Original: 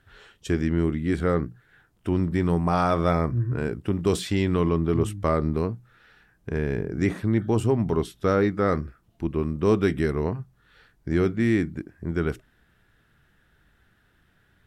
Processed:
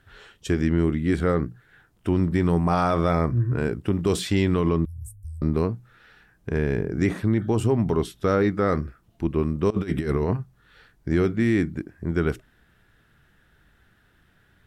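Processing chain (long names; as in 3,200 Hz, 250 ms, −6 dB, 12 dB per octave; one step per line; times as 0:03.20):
0:04.85–0:05.42: inverse Chebyshev band-stop filter 280–2,600 Hz, stop band 70 dB
0:09.70–0:10.37: compressor whose output falls as the input rises −26 dBFS, ratio −0.5
brickwall limiter −14.5 dBFS, peak gain reduction 4.5 dB
level +2.5 dB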